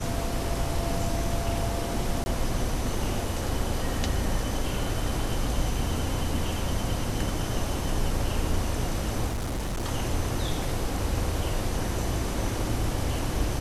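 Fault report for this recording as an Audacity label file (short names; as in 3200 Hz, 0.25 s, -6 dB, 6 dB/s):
2.240000	2.260000	gap 20 ms
9.270000	9.860000	clipped -26.5 dBFS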